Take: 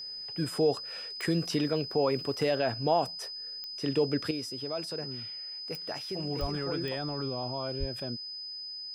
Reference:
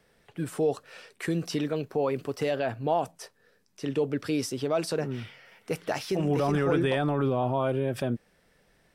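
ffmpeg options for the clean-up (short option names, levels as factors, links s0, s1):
-filter_complex "[0:a]adeclick=t=4,bandreject=f=5000:w=30,asplit=3[s0][s1][s2];[s0]afade=t=out:st=6.4:d=0.02[s3];[s1]highpass=f=140:w=0.5412,highpass=f=140:w=1.3066,afade=t=in:st=6.4:d=0.02,afade=t=out:st=6.52:d=0.02[s4];[s2]afade=t=in:st=6.52:d=0.02[s5];[s3][s4][s5]amix=inputs=3:normalize=0,asplit=3[s6][s7][s8];[s6]afade=t=out:st=7.79:d=0.02[s9];[s7]highpass=f=140:w=0.5412,highpass=f=140:w=1.3066,afade=t=in:st=7.79:d=0.02,afade=t=out:st=7.91:d=0.02[s10];[s8]afade=t=in:st=7.91:d=0.02[s11];[s9][s10][s11]amix=inputs=3:normalize=0,asetnsamples=n=441:p=0,asendcmd='4.31 volume volume 9dB',volume=1"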